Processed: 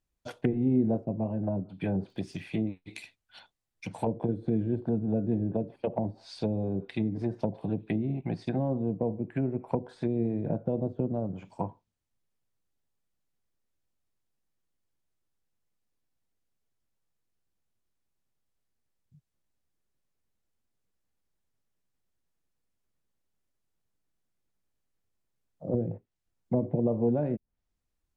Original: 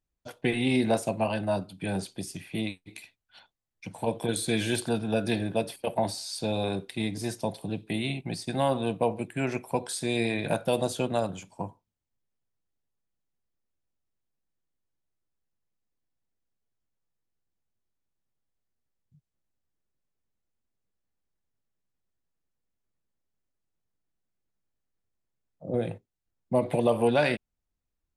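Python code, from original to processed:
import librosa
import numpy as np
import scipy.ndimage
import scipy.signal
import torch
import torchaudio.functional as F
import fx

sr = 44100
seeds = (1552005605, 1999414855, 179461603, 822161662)

y = fx.env_lowpass_down(x, sr, base_hz=350.0, full_db=-25.5)
y = fx.dmg_crackle(y, sr, seeds[0], per_s=61.0, level_db=-56.0, at=(2.08, 2.55), fade=0.02)
y = y * librosa.db_to_amplitude(2.0)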